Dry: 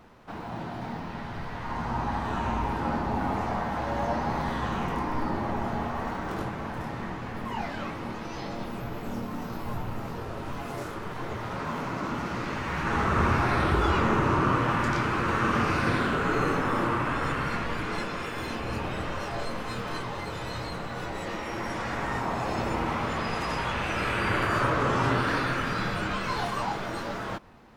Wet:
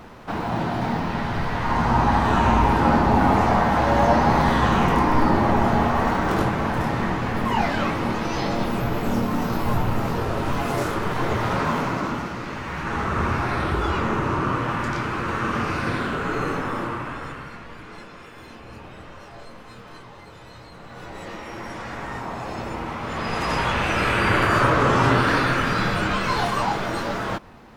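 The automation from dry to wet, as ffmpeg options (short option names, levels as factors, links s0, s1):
-af "volume=22.4,afade=t=out:st=11.5:d=0.85:silence=0.298538,afade=t=out:st=16.58:d=0.95:silence=0.334965,afade=t=in:st=20.72:d=0.51:silence=0.421697,afade=t=in:st=23.01:d=0.56:silence=0.375837"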